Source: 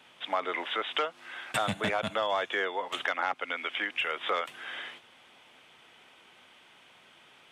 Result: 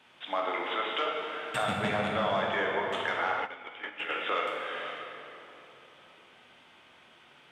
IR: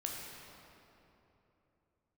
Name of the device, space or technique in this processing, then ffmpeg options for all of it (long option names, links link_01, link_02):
swimming-pool hall: -filter_complex "[1:a]atrim=start_sample=2205[link_01];[0:a][link_01]afir=irnorm=-1:irlink=0,highshelf=frequency=6000:gain=-6.5,asplit=3[link_02][link_03][link_04];[link_02]afade=type=out:start_time=3.45:duration=0.02[link_05];[link_03]agate=range=-12dB:threshold=-30dB:ratio=16:detection=peak,afade=type=in:start_time=3.45:duration=0.02,afade=type=out:start_time=4.08:duration=0.02[link_06];[link_04]afade=type=in:start_time=4.08:duration=0.02[link_07];[link_05][link_06][link_07]amix=inputs=3:normalize=0"